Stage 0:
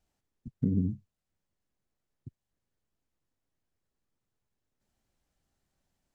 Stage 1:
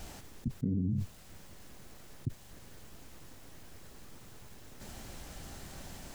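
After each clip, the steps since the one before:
envelope flattener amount 100%
level −6.5 dB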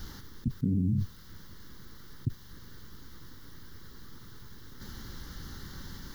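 phaser with its sweep stopped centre 2,500 Hz, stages 6
bit reduction 12 bits
level +5 dB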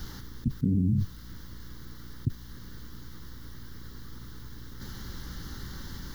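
mains hum 60 Hz, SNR 13 dB
level +2.5 dB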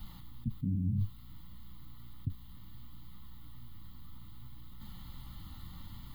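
phaser with its sweep stopped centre 1,600 Hz, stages 6
flanger 0.62 Hz, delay 4.4 ms, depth 7.9 ms, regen +60%
level −1.5 dB

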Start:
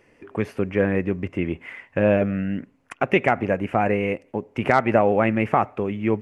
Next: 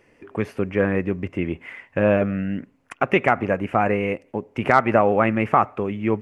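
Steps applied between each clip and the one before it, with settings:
dynamic equaliser 1,200 Hz, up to +6 dB, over −37 dBFS, Q 2.4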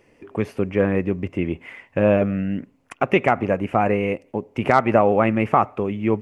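parametric band 1,600 Hz −5 dB 0.87 octaves
level +1.5 dB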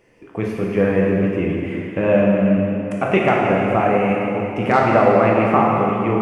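convolution reverb RT60 2.9 s, pre-delay 6 ms, DRR −3.5 dB
level −1.5 dB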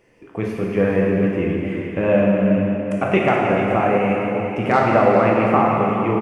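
single-tap delay 427 ms −11.5 dB
level −1 dB

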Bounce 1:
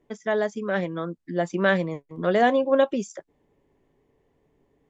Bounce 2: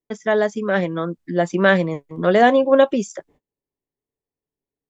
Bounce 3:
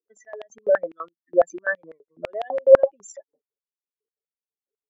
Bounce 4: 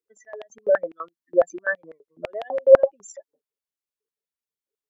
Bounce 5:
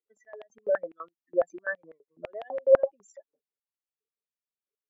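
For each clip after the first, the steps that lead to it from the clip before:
noise gate −57 dBFS, range −31 dB; level +6 dB
expanding power law on the bin magnitudes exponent 2.9; high-pass on a step sequencer 12 Hz 490–3,200 Hz; level −5 dB
notch filter 710 Hz, Q 12
bass and treble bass 0 dB, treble −10 dB; level −7 dB

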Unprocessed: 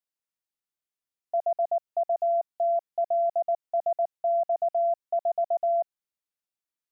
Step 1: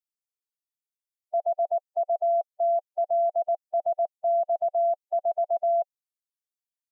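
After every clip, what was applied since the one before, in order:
spectral dynamics exaggerated over time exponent 2
level +1.5 dB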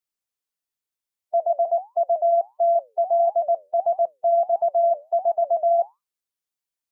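flanger 1.5 Hz, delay 5.2 ms, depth 6.3 ms, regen −79%
level +9 dB

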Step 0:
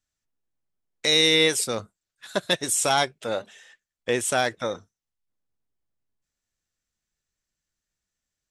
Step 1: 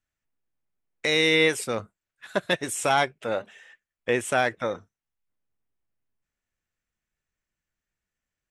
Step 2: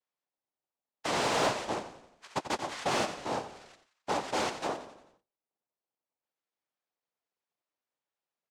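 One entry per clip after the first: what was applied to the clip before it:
high shelf with overshoot 3,200 Hz −7 dB, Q 1.5
cochlear-implant simulation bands 2; echo with shifted repeats 88 ms, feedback 52%, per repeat −31 Hz, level −12 dB; mid-hump overdrive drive 14 dB, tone 1,400 Hz, clips at −5.5 dBFS; level −9 dB

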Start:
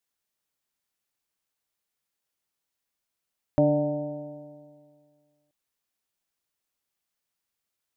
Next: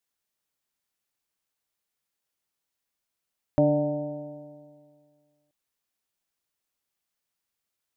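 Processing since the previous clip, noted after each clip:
no processing that can be heard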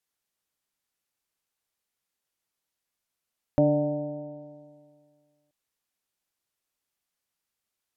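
treble cut that deepens with the level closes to 1,000 Hz, closed at −29.5 dBFS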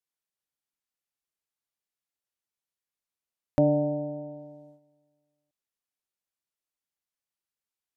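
noise gate −52 dBFS, range −9 dB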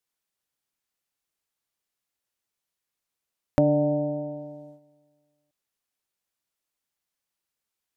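downward compressor 2 to 1, threshold −26 dBFS, peak gain reduction 5.5 dB
level +6 dB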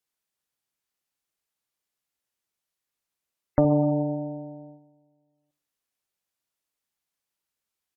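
repeating echo 68 ms, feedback 40%, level −13.5 dB
harmonic generator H 4 −21 dB, 7 −37 dB, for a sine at −6 dBFS
gate on every frequency bin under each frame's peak −30 dB strong

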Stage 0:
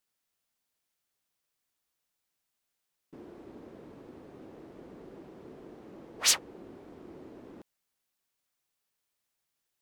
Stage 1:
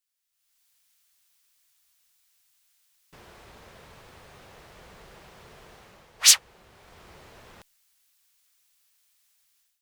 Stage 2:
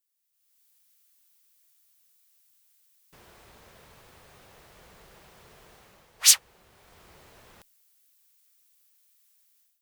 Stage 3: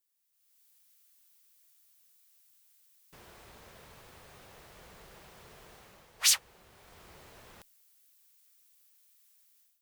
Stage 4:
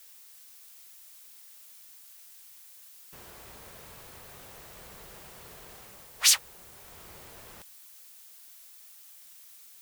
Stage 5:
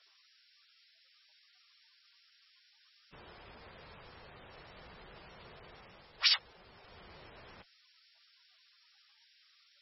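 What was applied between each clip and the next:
guitar amp tone stack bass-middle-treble 10-0-10; automatic gain control gain up to 16 dB
high-shelf EQ 9,200 Hz +10 dB; level −4.5 dB
brickwall limiter −12 dBFS, peak gain reduction 10.5 dB
background noise blue −56 dBFS; level +3.5 dB
level −3 dB; MP3 16 kbit/s 24,000 Hz

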